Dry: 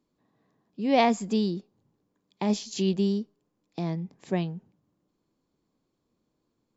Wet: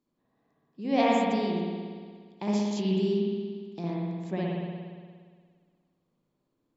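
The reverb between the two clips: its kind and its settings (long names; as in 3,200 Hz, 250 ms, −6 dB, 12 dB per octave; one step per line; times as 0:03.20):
spring reverb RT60 1.8 s, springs 58 ms, chirp 60 ms, DRR −4.5 dB
level −6.5 dB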